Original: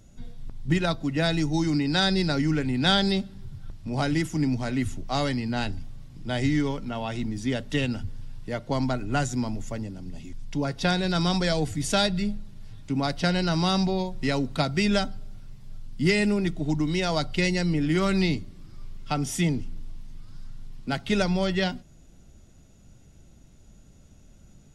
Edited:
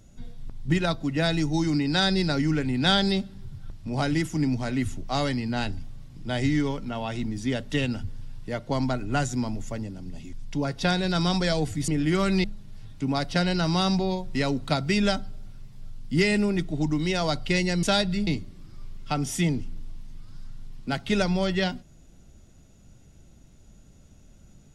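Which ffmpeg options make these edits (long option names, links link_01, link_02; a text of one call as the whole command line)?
ffmpeg -i in.wav -filter_complex "[0:a]asplit=5[link_01][link_02][link_03][link_04][link_05];[link_01]atrim=end=11.882[link_06];[link_02]atrim=start=17.708:end=18.272[link_07];[link_03]atrim=start=12.318:end=17.712[link_08];[link_04]atrim=start=11.878:end=12.322[link_09];[link_05]atrim=start=18.268[link_10];[link_06][link_07]acrossfade=duration=0.004:curve1=hsin:curve2=hsin[link_11];[link_11][link_08]acrossfade=duration=0.004:curve1=hsin:curve2=hsin[link_12];[link_12][link_09]acrossfade=duration=0.004:curve1=hsin:curve2=hsin[link_13];[link_13][link_10]acrossfade=duration=0.004:curve1=hsin:curve2=hsin" out.wav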